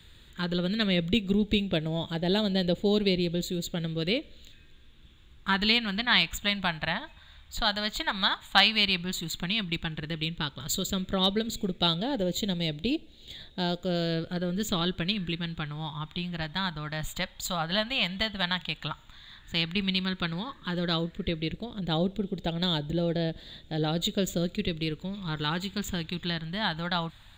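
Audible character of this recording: phasing stages 2, 0.098 Hz, lowest notch 400–1100 Hz

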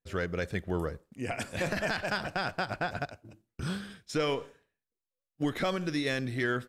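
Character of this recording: noise floor -91 dBFS; spectral tilt -4.0 dB/oct

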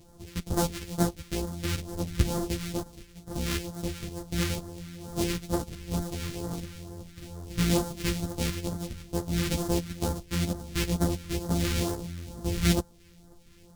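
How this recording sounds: a buzz of ramps at a fixed pitch in blocks of 256 samples; phasing stages 2, 2.2 Hz, lowest notch 690–2400 Hz; tremolo saw down 2 Hz, depth 35%; a shimmering, thickened sound

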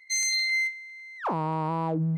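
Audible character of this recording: noise floor -44 dBFS; spectral tilt -3.0 dB/oct

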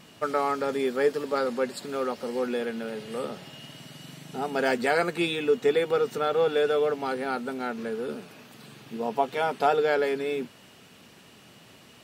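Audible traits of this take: noise floor -53 dBFS; spectral tilt -3.0 dB/oct

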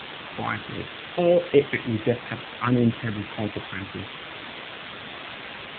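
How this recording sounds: phasing stages 2, 1.5 Hz, lowest notch 510–1100 Hz; a quantiser's noise floor 6-bit, dither triangular; AMR-NB

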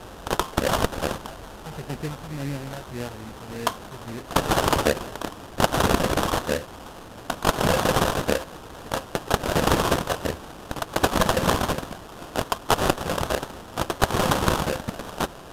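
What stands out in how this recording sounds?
a quantiser's noise floor 8-bit, dither triangular; phasing stages 2, 1.7 Hz, lowest notch 280–2800 Hz; aliases and images of a low sample rate 2200 Hz, jitter 20%; AC-3

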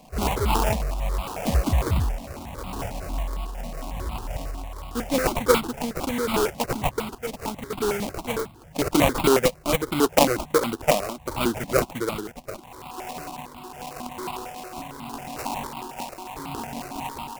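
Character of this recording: aliases and images of a low sample rate 1800 Hz, jitter 20%; tremolo triangle 0.79 Hz, depth 60%; notches that jump at a steady rate 11 Hz 380–1700 Hz

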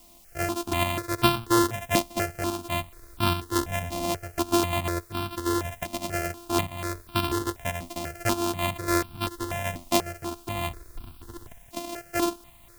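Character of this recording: a buzz of ramps at a fixed pitch in blocks of 128 samples; tremolo saw up 1.2 Hz, depth 55%; a quantiser's noise floor 10-bit, dither triangular; notches that jump at a steady rate 4.1 Hz 420–1900 Hz

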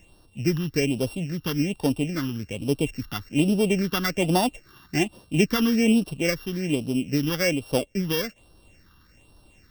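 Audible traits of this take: a buzz of ramps at a fixed pitch in blocks of 16 samples; phasing stages 6, 1.2 Hz, lowest notch 600–2100 Hz

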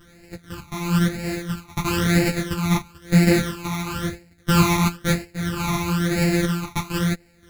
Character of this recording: a buzz of ramps at a fixed pitch in blocks of 256 samples; phasing stages 12, 1 Hz, lowest notch 510–1100 Hz; random-step tremolo; a shimmering, thickened sound

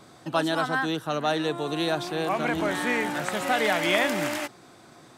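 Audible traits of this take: noise floor -52 dBFS; spectral tilt -4.0 dB/oct

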